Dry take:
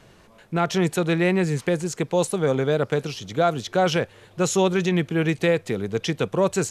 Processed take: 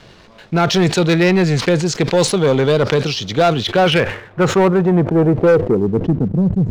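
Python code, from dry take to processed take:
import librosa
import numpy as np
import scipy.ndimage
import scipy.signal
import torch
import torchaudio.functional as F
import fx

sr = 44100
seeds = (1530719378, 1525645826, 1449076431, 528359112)

y = fx.filter_sweep_lowpass(x, sr, from_hz=4600.0, to_hz=170.0, start_s=3.39, end_s=6.56, q=1.8)
y = np.clip(10.0 ** (13.5 / 20.0) * y, -1.0, 1.0) / 10.0 ** (13.5 / 20.0)
y = fx.leveller(y, sr, passes=1)
y = fx.sustainer(y, sr, db_per_s=110.0)
y = y * 10.0 ** (6.0 / 20.0)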